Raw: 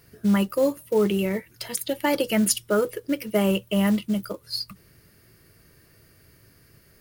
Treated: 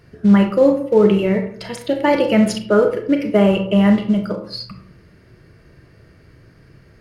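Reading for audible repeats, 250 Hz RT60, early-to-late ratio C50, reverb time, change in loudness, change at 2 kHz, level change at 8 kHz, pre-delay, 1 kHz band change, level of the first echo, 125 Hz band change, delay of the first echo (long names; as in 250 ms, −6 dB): no echo audible, 0.65 s, 8.0 dB, 0.55 s, +8.5 dB, +5.5 dB, −8.0 dB, 29 ms, +8.0 dB, no echo audible, +8.5 dB, no echo audible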